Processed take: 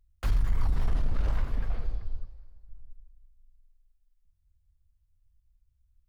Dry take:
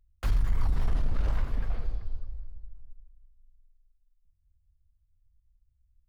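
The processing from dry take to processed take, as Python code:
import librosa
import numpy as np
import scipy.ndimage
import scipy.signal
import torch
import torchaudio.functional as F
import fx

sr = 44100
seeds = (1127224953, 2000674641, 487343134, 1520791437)

y = fx.low_shelf(x, sr, hz=360.0, db=-9.5, at=(2.25, 2.69))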